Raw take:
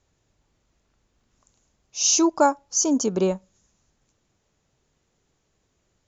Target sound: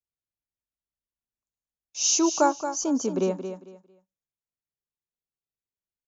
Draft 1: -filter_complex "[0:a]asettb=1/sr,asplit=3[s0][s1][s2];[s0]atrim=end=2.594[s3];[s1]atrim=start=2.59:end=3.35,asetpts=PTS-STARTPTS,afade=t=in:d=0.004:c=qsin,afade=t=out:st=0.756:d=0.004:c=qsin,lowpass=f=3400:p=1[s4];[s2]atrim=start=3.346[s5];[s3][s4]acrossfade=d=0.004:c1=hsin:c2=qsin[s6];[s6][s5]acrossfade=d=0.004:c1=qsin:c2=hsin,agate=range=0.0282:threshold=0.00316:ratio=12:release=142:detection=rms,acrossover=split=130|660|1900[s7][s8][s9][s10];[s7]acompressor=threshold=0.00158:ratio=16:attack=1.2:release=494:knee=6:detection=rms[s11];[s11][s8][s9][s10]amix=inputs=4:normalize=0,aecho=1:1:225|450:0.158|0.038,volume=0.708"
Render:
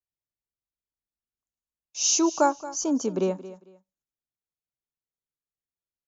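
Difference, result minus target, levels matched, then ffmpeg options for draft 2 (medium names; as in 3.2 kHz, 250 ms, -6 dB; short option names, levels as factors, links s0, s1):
echo-to-direct -6.5 dB
-filter_complex "[0:a]asettb=1/sr,asplit=3[s0][s1][s2];[s0]atrim=end=2.594[s3];[s1]atrim=start=2.59:end=3.35,asetpts=PTS-STARTPTS,afade=t=in:d=0.004:c=qsin,afade=t=out:st=0.756:d=0.004:c=qsin,lowpass=f=3400:p=1[s4];[s2]atrim=start=3.346[s5];[s3][s4]acrossfade=d=0.004:c1=hsin:c2=qsin[s6];[s6][s5]acrossfade=d=0.004:c1=qsin:c2=hsin,agate=range=0.0282:threshold=0.00316:ratio=12:release=142:detection=rms,acrossover=split=130|660|1900[s7][s8][s9][s10];[s7]acompressor=threshold=0.00158:ratio=16:attack=1.2:release=494:knee=6:detection=rms[s11];[s11][s8][s9][s10]amix=inputs=4:normalize=0,aecho=1:1:225|450|675:0.335|0.0804|0.0193,volume=0.708"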